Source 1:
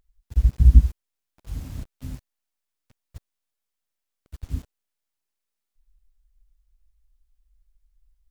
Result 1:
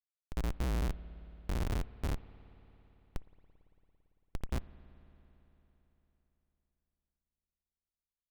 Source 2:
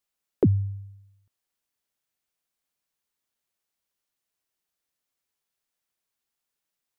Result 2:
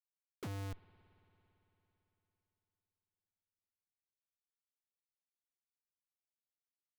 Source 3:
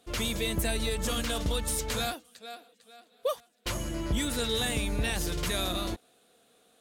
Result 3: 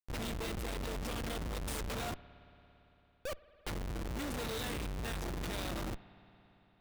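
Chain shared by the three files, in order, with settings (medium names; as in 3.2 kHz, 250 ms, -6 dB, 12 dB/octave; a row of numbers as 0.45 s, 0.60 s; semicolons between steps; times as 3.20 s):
Schmitt trigger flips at -31 dBFS; spring tank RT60 3.9 s, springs 56 ms, chirp 35 ms, DRR 16.5 dB; trim -6 dB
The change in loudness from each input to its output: -17.5 LU, -20.5 LU, -9.0 LU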